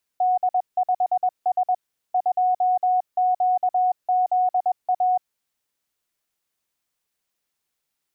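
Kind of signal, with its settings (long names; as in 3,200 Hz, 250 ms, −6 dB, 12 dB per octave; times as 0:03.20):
Morse code "D5S 2QZA" 21 words per minute 734 Hz −16.5 dBFS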